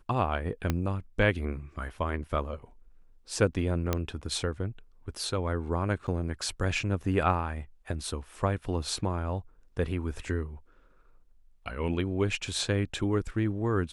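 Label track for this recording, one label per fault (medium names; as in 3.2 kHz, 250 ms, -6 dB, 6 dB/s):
0.700000	0.700000	pop -13 dBFS
3.930000	3.930000	pop -12 dBFS
6.070000	6.080000	dropout 7 ms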